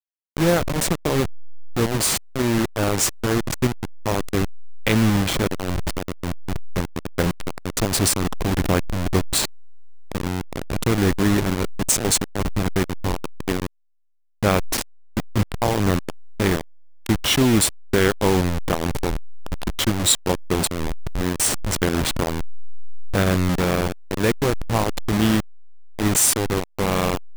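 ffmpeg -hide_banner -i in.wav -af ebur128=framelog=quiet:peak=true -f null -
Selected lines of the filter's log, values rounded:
Integrated loudness:
  I:         -22.1 LUFS
  Threshold: -32.3 LUFS
Loudness range:
  LRA:         3.3 LU
  Threshold: -42.6 LUFS
  LRA low:   -24.2 LUFS
  LRA high:  -20.9 LUFS
True peak:
  Peak:       -3.2 dBFS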